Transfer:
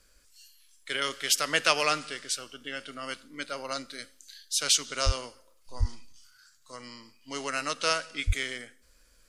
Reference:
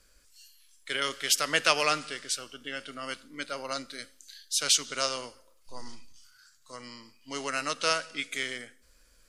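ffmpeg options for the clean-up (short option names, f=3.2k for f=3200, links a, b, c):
-filter_complex "[0:a]asplit=3[a][b][c];[a]afade=t=out:st=5.05:d=0.02[d];[b]highpass=f=140:w=0.5412,highpass=f=140:w=1.3066,afade=t=in:st=5.05:d=0.02,afade=t=out:st=5.17:d=0.02[e];[c]afade=t=in:st=5.17:d=0.02[f];[d][e][f]amix=inputs=3:normalize=0,asplit=3[g][h][i];[g]afade=t=out:st=5.79:d=0.02[j];[h]highpass=f=140:w=0.5412,highpass=f=140:w=1.3066,afade=t=in:st=5.79:d=0.02,afade=t=out:st=5.91:d=0.02[k];[i]afade=t=in:st=5.91:d=0.02[l];[j][k][l]amix=inputs=3:normalize=0,asplit=3[m][n][o];[m]afade=t=out:st=8.26:d=0.02[p];[n]highpass=f=140:w=0.5412,highpass=f=140:w=1.3066,afade=t=in:st=8.26:d=0.02,afade=t=out:st=8.38:d=0.02[q];[o]afade=t=in:st=8.38:d=0.02[r];[p][q][r]amix=inputs=3:normalize=0"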